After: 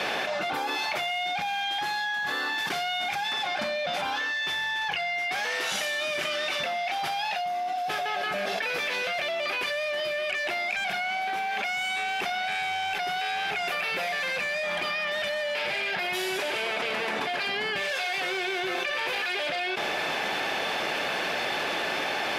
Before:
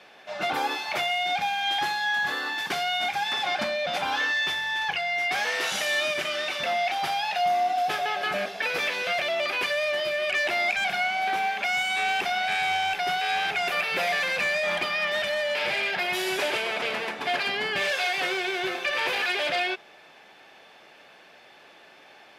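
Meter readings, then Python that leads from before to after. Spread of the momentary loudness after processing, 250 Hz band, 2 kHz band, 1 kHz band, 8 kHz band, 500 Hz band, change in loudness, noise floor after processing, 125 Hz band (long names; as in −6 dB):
1 LU, 0.0 dB, −2.0 dB, −2.5 dB, −1.0 dB, −1.5 dB, −2.5 dB, −30 dBFS, 0.0 dB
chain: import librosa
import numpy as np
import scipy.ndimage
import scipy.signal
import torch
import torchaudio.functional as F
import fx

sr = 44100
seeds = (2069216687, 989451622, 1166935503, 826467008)

y = fx.env_flatten(x, sr, amount_pct=100)
y = y * 10.0 ** (-7.5 / 20.0)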